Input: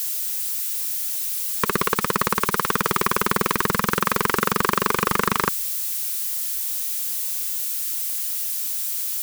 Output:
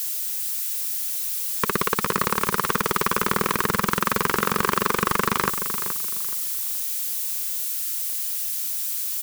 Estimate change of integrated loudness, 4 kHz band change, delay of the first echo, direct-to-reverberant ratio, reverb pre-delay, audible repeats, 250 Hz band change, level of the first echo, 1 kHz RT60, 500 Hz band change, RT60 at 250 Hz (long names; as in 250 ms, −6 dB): −1.0 dB, −1.0 dB, 424 ms, no reverb audible, no reverb audible, 3, −1.0 dB, −10.0 dB, no reverb audible, −1.0 dB, no reverb audible